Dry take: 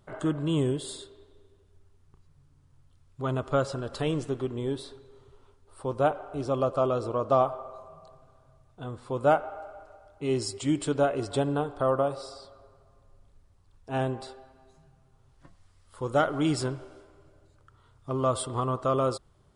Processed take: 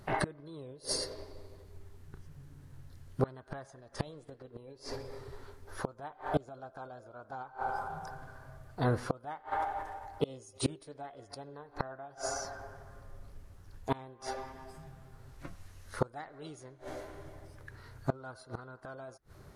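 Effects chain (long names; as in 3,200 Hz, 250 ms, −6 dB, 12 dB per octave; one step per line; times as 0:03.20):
gate with flip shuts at −26 dBFS, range −29 dB
formants moved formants +4 semitones
level +8.5 dB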